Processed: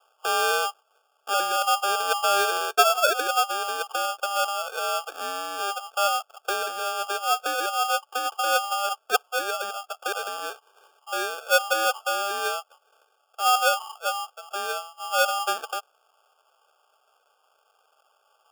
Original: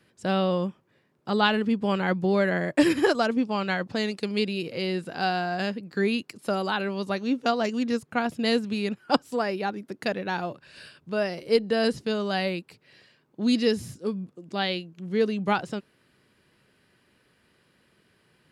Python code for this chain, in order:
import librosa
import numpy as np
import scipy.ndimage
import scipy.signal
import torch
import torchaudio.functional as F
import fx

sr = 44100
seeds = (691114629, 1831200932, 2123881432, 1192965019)

y = scipy.signal.sosfilt(scipy.signal.ellip(4, 1.0, 40, 570.0, 'lowpass', fs=sr, output='sos'), x)
y = y * np.sign(np.sin(2.0 * np.pi * 1000.0 * np.arange(len(y)) / sr))
y = y * librosa.db_to_amplitude(2.0)